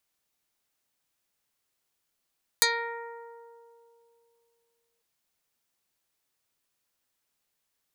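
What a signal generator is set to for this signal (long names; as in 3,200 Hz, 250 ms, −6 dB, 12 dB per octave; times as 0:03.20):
Karplus-Strong string A#4, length 2.40 s, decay 2.88 s, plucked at 0.17, dark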